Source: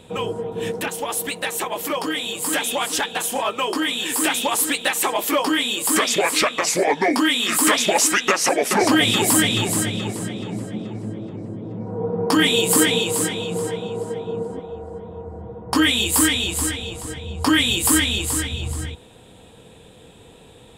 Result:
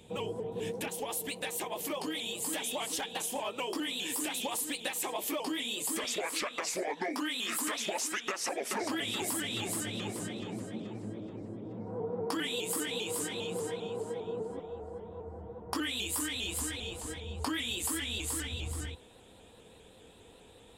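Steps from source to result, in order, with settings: peaking EQ 1.4 kHz -8 dB 0.78 oct, from 6.04 s 140 Hz; compression 6:1, threshold -23 dBFS, peak gain reduction 11 dB; vibrato with a chosen wave saw up 5 Hz, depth 100 cents; trim -8.5 dB

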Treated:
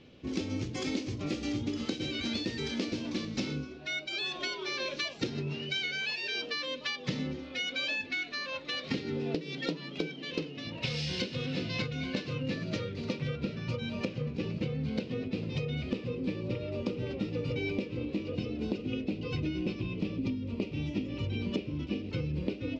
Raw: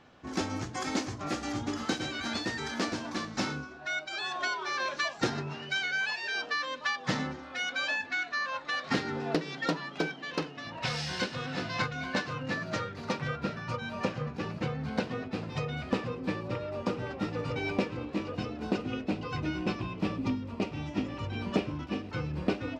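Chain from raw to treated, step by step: low-pass 4.6 kHz 12 dB/octave; high-order bell 1.1 kHz -14.5 dB; compression 10:1, threshold -34 dBFS, peak gain reduction 12 dB; trim +5 dB

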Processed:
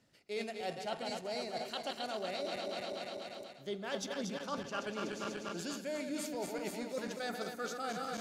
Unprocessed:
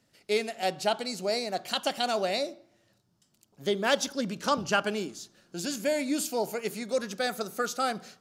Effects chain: backward echo that repeats 122 ms, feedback 81%, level -7.5 dB; treble shelf 7.8 kHz -7 dB; reverse; compression 6:1, threshold -35 dBFS, peak gain reduction 15 dB; reverse; trim -1.5 dB

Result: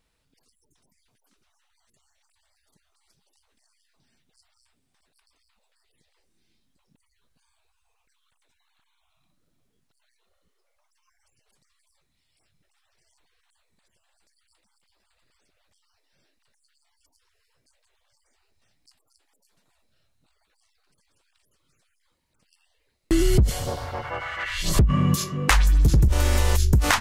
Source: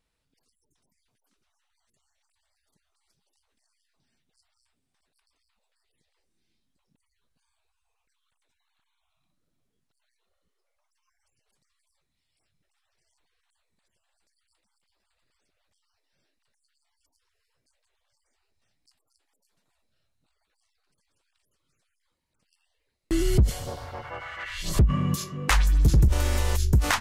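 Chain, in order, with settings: compression, threshold -20 dBFS, peak gain reduction 5.5 dB; trim +6 dB

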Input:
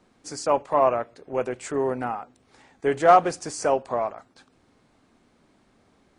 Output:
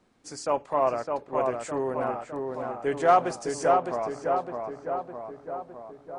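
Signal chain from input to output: filtered feedback delay 609 ms, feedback 63%, low-pass 2 kHz, level -3.5 dB; trim -4.5 dB

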